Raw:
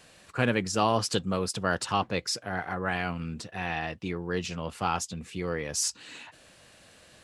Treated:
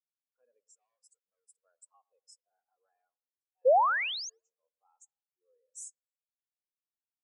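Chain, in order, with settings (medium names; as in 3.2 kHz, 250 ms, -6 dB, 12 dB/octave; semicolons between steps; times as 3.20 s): graphic EQ 125/250/500/1000/2000/4000/8000 Hz -9/+4/+10/+5/-6/-9/+7 dB; in parallel at 0 dB: peak limiter -16 dBFS, peak gain reduction 9.5 dB; 0.65–1.52 s: on the sum: overload inside the chain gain 20 dB; differentiator; 3.65–4.30 s: painted sound rise 470–6900 Hz -18 dBFS; level-controlled noise filter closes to 2.5 kHz, open at -27.5 dBFS; on a send: tape echo 114 ms, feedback 71%, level -8.5 dB, low-pass 1.5 kHz; on the sum: spectral contrast expander 2.5:1; trim -8 dB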